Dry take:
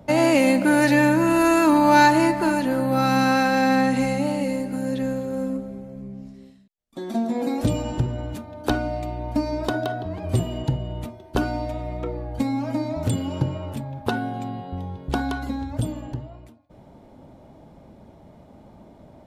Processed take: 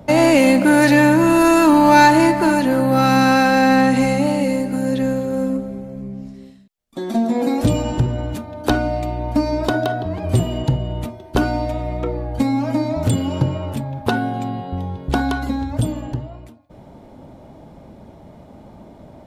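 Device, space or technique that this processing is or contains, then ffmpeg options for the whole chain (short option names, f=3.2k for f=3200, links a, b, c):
parallel distortion: -filter_complex "[0:a]asplit=2[a][b];[b]asoftclip=type=hard:threshold=-18dB,volume=-6dB[c];[a][c]amix=inputs=2:normalize=0,volume=2.5dB"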